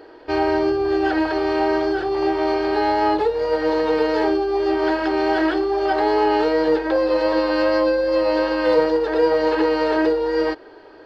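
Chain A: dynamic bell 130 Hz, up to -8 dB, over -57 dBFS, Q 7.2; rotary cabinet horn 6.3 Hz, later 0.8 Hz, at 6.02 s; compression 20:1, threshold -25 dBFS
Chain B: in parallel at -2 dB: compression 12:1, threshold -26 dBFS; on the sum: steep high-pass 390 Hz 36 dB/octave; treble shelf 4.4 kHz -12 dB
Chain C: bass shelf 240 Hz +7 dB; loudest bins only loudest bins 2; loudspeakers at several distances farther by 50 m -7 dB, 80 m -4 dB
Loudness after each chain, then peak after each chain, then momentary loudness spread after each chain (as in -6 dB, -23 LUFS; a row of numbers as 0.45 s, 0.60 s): -29.0 LUFS, -19.5 LUFS, -20.0 LUFS; -18.0 dBFS, -5.5 dBFS, -6.5 dBFS; 1 LU, 4 LU, 5 LU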